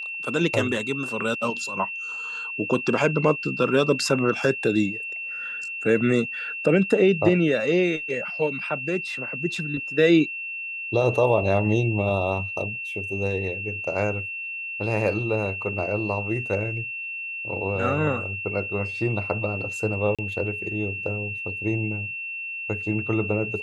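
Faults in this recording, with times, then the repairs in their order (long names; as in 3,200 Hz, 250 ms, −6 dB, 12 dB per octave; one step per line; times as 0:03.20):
whistle 2,700 Hz −30 dBFS
0:20.15–0:20.19: drop-out 36 ms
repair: notch filter 2,700 Hz, Q 30
repair the gap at 0:20.15, 36 ms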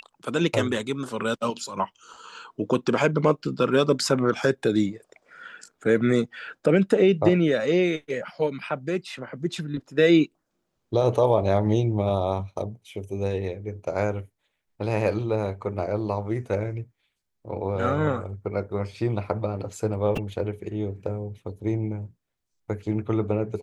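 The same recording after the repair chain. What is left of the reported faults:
none of them is left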